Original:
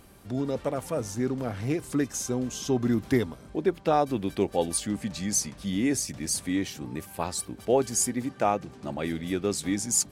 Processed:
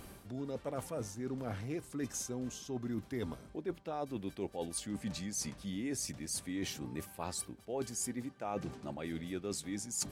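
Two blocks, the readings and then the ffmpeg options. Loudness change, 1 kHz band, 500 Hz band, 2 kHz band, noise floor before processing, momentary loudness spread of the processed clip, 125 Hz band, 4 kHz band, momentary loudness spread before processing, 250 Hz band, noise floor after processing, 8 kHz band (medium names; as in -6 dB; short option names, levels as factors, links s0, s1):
-11.5 dB, -14.0 dB, -13.0 dB, -11.0 dB, -49 dBFS, 4 LU, -10.0 dB, -8.5 dB, 7 LU, -11.5 dB, -57 dBFS, -11.0 dB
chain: -af "tremolo=f=1.4:d=0.39,areverse,acompressor=threshold=0.0112:ratio=6,areverse,volume=1.33"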